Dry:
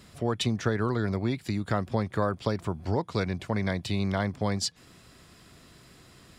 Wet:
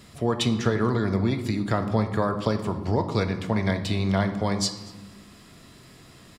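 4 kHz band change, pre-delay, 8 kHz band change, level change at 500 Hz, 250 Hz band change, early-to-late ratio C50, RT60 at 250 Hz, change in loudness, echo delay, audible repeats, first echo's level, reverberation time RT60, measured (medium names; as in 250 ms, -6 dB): +3.5 dB, 3 ms, +3.5 dB, +4.0 dB, +5.0 dB, 10.0 dB, 1.9 s, +4.0 dB, 239 ms, 1, -23.5 dB, 1.3 s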